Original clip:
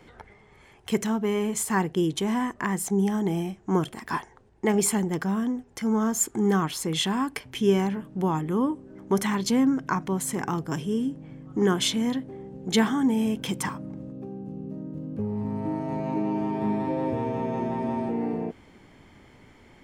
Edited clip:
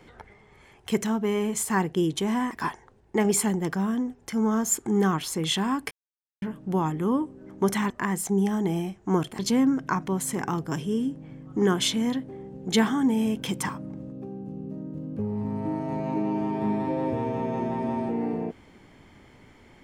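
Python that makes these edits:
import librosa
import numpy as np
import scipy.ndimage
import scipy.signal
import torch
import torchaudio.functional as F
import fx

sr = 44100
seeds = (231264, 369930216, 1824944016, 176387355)

y = fx.edit(x, sr, fx.move(start_s=2.51, length_s=1.49, to_s=9.39),
    fx.silence(start_s=7.4, length_s=0.51), tone=tone)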